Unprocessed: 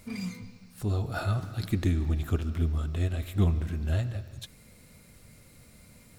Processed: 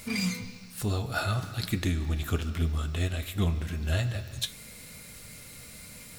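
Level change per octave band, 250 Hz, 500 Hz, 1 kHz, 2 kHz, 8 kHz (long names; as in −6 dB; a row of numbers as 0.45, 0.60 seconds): 0.0, +0.5, +3.5, +6.5, +10.0 decibels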